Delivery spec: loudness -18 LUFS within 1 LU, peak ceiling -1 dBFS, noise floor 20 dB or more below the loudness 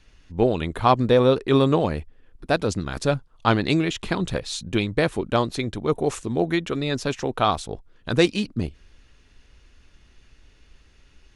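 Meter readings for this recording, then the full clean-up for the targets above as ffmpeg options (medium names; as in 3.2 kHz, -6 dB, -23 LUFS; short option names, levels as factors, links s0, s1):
loudness -23.0 LUFS; peak level -3.5 dBFS; loudness target -18.0 LUFS
-> -af "volume=1.78,alimiter=limit=0.891:level=0:latency=1"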